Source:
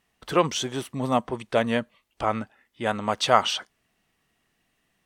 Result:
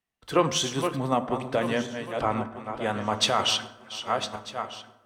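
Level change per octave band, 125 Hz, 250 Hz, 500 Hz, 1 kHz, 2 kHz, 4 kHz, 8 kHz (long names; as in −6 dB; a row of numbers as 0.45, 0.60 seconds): +0.5, −0.5, −1.5, −1.5, −1.5, +2.5, +3.0 decibels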